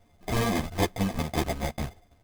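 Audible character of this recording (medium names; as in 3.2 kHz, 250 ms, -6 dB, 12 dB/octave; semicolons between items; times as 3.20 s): a buzz of ramps at a fixed pitch in blocks of 64 samples; phasing stages 12, 2.5 Hz, lowest notch 470–2900 Hz; aliases and images of a low sample rate 1.4 kHz, jitter 0%; a shimmering, thickened sound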